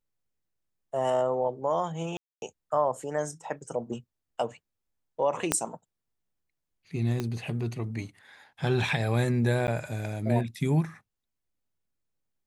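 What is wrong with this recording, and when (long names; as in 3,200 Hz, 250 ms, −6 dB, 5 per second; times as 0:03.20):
0:02.17–0:02.42: drop-out 251 ms
0:05.52: click −8 dBFS
0:07.20: click −17 dBFS
0:09.67–0:09.68: drop-out 9.4 ms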